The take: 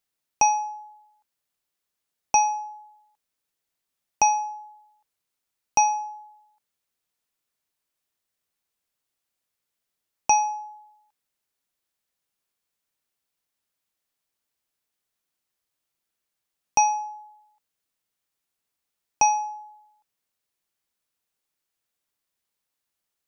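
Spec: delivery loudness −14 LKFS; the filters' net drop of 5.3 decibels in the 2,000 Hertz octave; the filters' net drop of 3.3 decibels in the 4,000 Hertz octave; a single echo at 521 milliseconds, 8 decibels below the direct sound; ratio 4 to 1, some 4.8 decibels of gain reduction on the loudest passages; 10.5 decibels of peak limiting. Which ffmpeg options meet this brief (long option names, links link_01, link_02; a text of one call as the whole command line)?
ffmpeg -i in.wav -af "equalizer=frequency=2000:width_type=o:gain=-4.5,equalizer=frequency=4000:width_type=o:gain=-6,acompressor=threshold=-21dB:ratio=4,alimiter=limit=-21dB:level=0:latency=1,aecho=1:1:521:0.398,volume=19dB" out.wav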